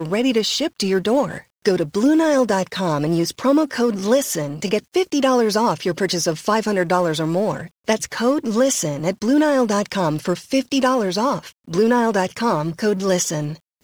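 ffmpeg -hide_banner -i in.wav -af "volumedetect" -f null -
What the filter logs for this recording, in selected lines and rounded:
mean_volume: -19.3 dB
max_volume: -4.0 dB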